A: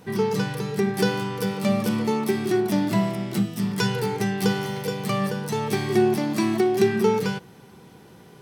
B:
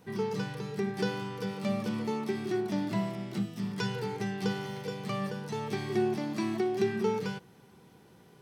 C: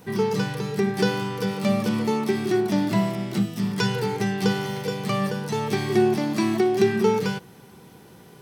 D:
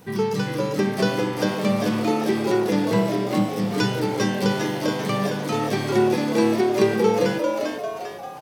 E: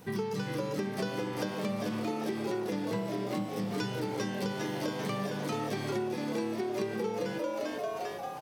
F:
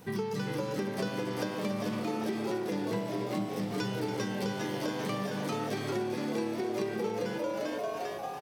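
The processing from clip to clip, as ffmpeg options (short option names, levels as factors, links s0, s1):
-filter_complex "[0:a]acrossover=split=6800[s0][s1];[s1]acompressor=threshold=0.00398:ratio=4:attack=1:release=60[s2];[s0][s2]amix=inputs=2:normalize=0,volume=0.355"
-af "highshelf=f=9500:g=7,volume=2.82"
-filter_complex "[0:a]asplit=7[s0][s1][s2][s3][s4][s5][s6];[s1]adelay=397,afreqshift=110,volume=0.631[s7];[s2]adelay=794,afreqshift=220,volume=0.302[s8];[s3]adelay=1191,afreqshift=330,volume=0.145[s9];[s4]adelay=1588,afreqshift=440,volume=0.07[s10];[s5]adelay=1985,afreqshift=550,volume=0.0335[s11];[s6]adelay=2382,afreqshift=660,volume=0.016[s12];[s0][s7][s8][s9][s10][s11][s12]amix=inputs=7:normalize=0"
-af "acompressor=threshold=0.0447:ratio=6,volume=0.668"
-af "aecho=1:1:284:0.316"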